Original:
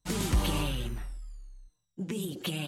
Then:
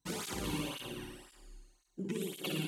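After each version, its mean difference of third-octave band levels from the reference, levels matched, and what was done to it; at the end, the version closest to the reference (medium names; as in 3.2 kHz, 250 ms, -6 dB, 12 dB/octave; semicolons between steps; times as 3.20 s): 6.5 dB: compression 3:1, threshold -37 dBFS, peak gain reduction 11.5 dB; feedback comb 200 Hz, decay 1.7 s, mix 70%; flutter echo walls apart 9.8 m, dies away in 1.3 s; cancelling through-zero flanger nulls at 1.9 Hz, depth 1.8 ms; trim +12 dB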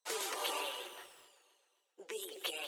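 11.5 dB: Chebyshev high-pass 430 Hz, order 4; reverb removal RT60 0.55 s; on a send: echo whose repeats swap between lows and highs 131 ms, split 1.9 kHz, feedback 65%, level -13 dB; on the sum: bit-crushed delay 188 ms, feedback 35%, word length 9-bit, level -11 dB; trim -1.5 dB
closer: first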